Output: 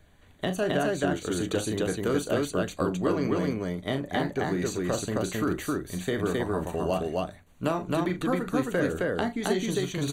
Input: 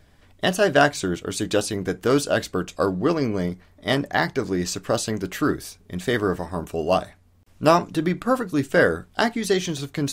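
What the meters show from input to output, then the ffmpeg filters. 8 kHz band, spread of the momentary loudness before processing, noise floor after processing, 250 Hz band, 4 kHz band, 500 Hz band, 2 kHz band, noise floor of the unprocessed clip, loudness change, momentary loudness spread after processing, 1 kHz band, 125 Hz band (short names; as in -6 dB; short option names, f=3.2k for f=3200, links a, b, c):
-6.0 dB, 9 LU, -55 dBFS, -3.5 dB, -7.5 dB, -5.5 dB, -8.5 dB, -55 dBFS, -5.5 dB, 5 LU, -7.5 dB, -3.5 dB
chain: -filter_complex "[0:a]asuperstop=centerf=5200:order=8:qfactor=4.7,acrossover=split=460|920[a][b][c];[a]acompressor=threshold=-24dB:ratio=4[d];[b]acompressor=threshold=-31dB:ratio=4[e];[c]acompressor=threshold=-33dB:ratio=4[f];[d][e][f]amix=inputs=3:normalize=0,aecho=1:1:37.9|265.3:0.355|0.891,volume=-3.5dB"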